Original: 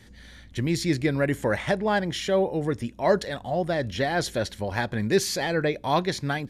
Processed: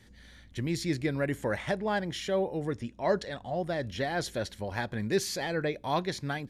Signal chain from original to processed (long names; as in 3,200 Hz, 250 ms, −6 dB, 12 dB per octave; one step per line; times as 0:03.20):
0:02.75–0:03.56: low-pass filter 8,100 Hz 12 dB per octave
level −6 dB